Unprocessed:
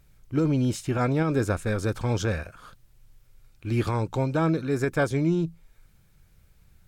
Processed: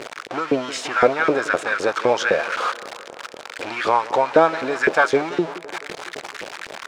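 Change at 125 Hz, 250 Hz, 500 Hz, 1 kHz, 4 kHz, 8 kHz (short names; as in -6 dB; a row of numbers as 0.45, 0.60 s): -14.0, -1.5, +9.0, +13.5, +11.5, +6.0 dB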